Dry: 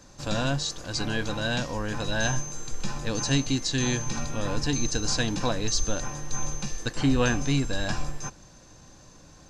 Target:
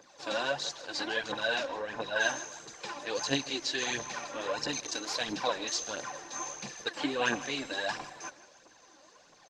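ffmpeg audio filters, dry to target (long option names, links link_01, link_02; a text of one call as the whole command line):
ffmpeg -i in.wav -filter_complex "[0:a]asettb=1/sr,asplit=3[link_01][link_02][link_03];[link_01]atrim=end=1.654[link_04];[link_02]atrim=start=1.65:end=2.16,asetpts=PTS-STARTPTS,afade=type=in:duration=0.004:curve=qsin,afade=type=out:start_time=0.506:duration=0.004:curve=qsin,highshelf=frequency=2700:gain=-8[link_05];[link_03]atrim=start=2.156[link_06];[link_04][link_05]acrossfade=duration=0.004:curve1=hsin:curve2=qsin[link_07];[link_07][link_06]acrossfade=duration=0.004:curve1=qsin:curve2=hsin,bandreject=frequency=1300:width=11,aphaser=in_gain=1:out_gain=1:delay=3.8:decay=0.65:speed=1.5:type=triangular,asplit=3[link_08][link_09][link_10];[link_08]afade=type=out:start_time=4.66:duration=0.02[link_11];[link_09]asoftclip=type=hard:threshold=-17dB,afade=type=in:start_time=4.66:duration=0.02,afade=type=out:start_time=5.24:duration=0.02[link_12];[link_10]afade=type=in:start_time=5.24:duration=0.02[link_13];[link_11][link_12][link_13]amix=inputs=3:normalize=0,highpass=480,lowpass=5100,asettb=1/sr,asplit=3[link_14][link_15][link_16];[link_14]atrim=end=6.224[link_17];[link_15]atrim=start=6.22:end=6.8,asetpts=PTS-STARTPTS,afade=type=in:duration=0.004:curve=qsin,afade=type=out:start_time=0.576:duration=0.004:curve=qsin,asplit=2[link_18][link_19];[link_19]adelay=30,volume=-10dB[link_20];[link_18][link_20]amix=inputs=2:normalize=0,atrim=end_sample=25578[link_21];[link_16]atrim=start=6.796[link_22];[link_17][link_21]acrossfade=duration=0.004:curve1=hsin:curve2=qsin[link_23];[link_23][link_22]acrossfade=duration=0.004:curve1=qsin:curve2=hsin,aecho=1:1:157|314|471|628:0.126|0.0567|0.0255|0.0115,volume=-1.5dB" -ar 48000 -c:a libopus -b:a 20k out.opus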